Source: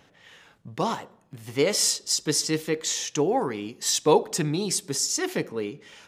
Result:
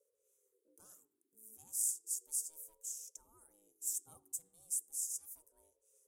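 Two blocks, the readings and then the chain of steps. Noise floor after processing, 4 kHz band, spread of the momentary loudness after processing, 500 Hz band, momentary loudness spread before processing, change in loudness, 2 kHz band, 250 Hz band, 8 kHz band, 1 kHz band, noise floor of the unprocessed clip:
-83 dBFS, -32.0 dB, 19 LU, under -40 dB, 12 LU, -14.0 dB, under -40 dB, under -40 dB, -11.5 dB, under -40 dB, -60 dBFS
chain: inverse Chebyshev band-stop 130–4800 Hz, stop band 40 dB; ring modulator with a swept carrier 410 Hz, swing 20%, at 0.35 Hz

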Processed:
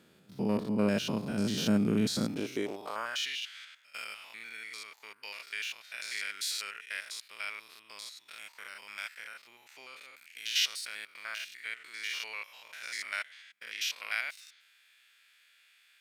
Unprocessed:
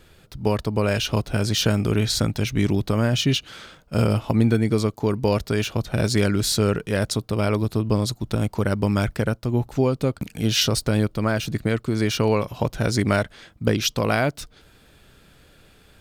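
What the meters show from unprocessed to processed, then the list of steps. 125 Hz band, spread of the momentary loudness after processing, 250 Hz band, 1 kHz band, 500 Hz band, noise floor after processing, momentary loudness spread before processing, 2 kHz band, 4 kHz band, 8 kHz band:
-21.0 dB, 18 LU, -12.0 dB, -14.5 dB, -16.5 dB, -65 dBFS, 5 LU, -6.5 dB, -8.5 dB, -10.5 dB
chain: spectrogram pixelated in time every 100 ms; high-pass sweep 200 Hz -> 2.1 kHz, 2.22–3.35 s; trim -8 dB

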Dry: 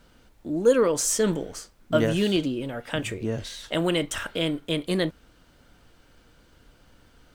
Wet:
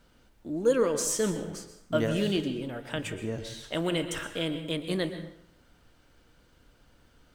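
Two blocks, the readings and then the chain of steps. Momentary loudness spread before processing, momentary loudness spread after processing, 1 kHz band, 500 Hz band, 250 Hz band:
11 LU, 12 LU, -4.5 dB, -4.5 dB, -4.5 dB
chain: plate-style reverb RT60 0.74 s, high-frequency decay 0.7×, pre-delay 105 ms, DRR 9.5 dB; trim -5 dB

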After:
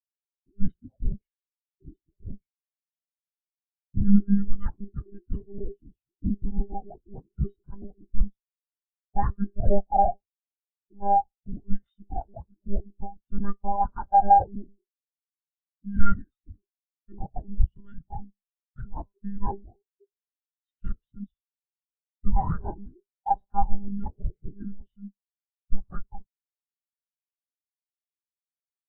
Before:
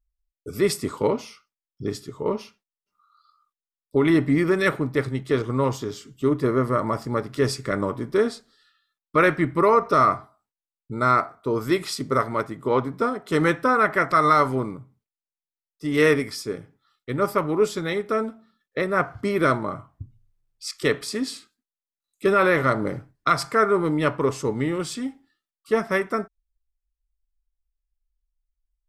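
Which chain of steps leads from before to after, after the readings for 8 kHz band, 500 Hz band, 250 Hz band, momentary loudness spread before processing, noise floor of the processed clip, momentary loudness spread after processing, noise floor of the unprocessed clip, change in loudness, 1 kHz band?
under -40 dB, -16.5 dB, -6.5 dB, 13 LU, under -85 dBFS, 21 LU, under -85 dBFS, -5.5 dB, -2.5 dB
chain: frequency shift -490 Hz; monotone LPC vocoder at 8 kHz 200 Hz; spectral contrast expander 2.5:1

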